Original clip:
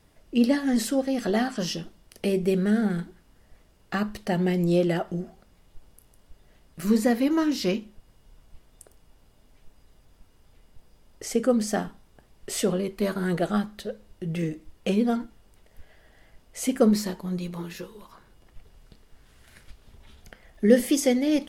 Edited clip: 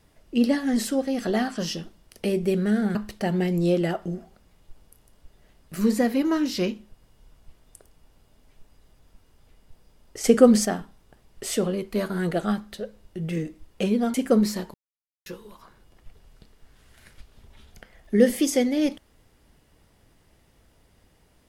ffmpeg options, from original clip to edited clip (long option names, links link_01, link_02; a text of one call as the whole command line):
ffmpeg -i in.wav -filter_complex "[0:a]asplit=7[link_01][link_02][link_03][link_04][link_05][link_06][link_07];[link_01]atrim=end=2.952[link_08];[link_02]atrim=start=4.008:end=11.302[link_09];[link_03]atrim=start=11.298:end=11.712,asetpts=PTS-STARTPTS,volume=7.5dB[link_10];[link_04]atrim=start=11.708:end=15.202[link_11];[link_05]atrim=start=16.638:end=17.24,asetpts=PTS-STARTPTS,afade=type=out:start_time=0.598:duration=0.004:curve=hsin[link_12];[link_06]atrim=start=17.24:end=17.76,asetpts=PTS-STARTPTS,volume=0[link_13];[link_07]atrim=start=17.76,asetpts=PTS-STARTPTS,afade=type=in:duration=0.004:curve=hsin[link_14];[link_08][link_09]acrossfade=duration=0.004:curve1=hsin:curve2=hsin[link_15];[link_15][link_10]acrossfade=duration=0.004:curve1=hsin:curve2=hsin[link_16];[link_16][link_11]acrossfade=duration=0.004:curve1=hsin:curve2=hsin[link_17];[link_12][link_13][link_14]concat=n=3:v=0:a=1[link_18];[link_17][link_18]acrossfade=duration=0.004:curve1=hsin:curve2=hsin" out.wav